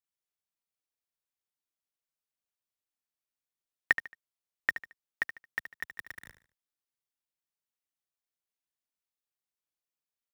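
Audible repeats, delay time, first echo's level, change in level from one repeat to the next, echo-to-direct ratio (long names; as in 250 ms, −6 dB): 3, 74 ms, −11.5 dB, −10.0 dB, −11.0 dB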